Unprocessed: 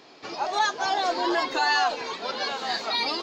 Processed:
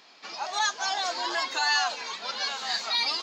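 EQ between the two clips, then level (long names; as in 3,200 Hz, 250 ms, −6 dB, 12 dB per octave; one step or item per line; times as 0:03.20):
dynamic equaliser 6,900 Hz, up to +6 dB, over −46 dBFS, Q 1.4
linear-phase brick-wall high-pass 160 Hz
parametric band 350 Hz −14.5 dB 1.9 octaves
0.0 dB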